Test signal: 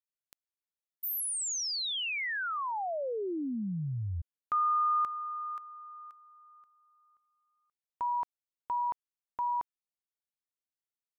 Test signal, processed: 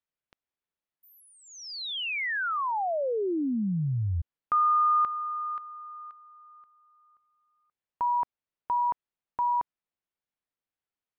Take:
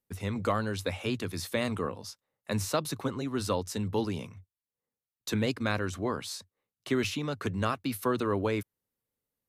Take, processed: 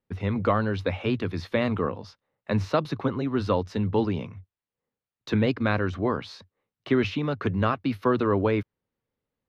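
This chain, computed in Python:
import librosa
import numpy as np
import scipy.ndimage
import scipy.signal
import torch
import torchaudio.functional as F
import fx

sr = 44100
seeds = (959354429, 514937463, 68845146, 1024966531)

y = fx.air_absorb(x, sr, metres=280.0)
y = F.gain(torch.from_numpy(y), 6.5).numpy()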